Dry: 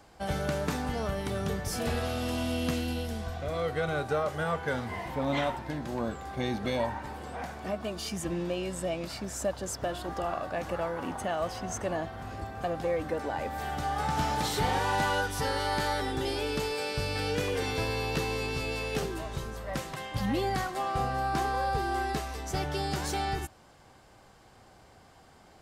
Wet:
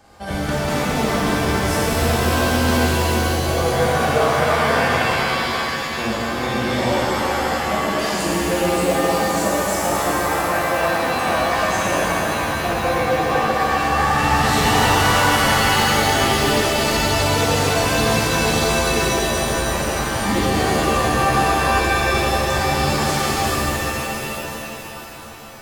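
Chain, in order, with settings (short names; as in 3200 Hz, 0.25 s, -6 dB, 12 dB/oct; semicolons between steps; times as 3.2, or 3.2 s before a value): 5.16–5.98 passive tone stack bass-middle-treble 5-5-5; shimmer reverb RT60 3.6 s, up +7 st, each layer -2 dB, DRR -8 dB; gain +2.5 dB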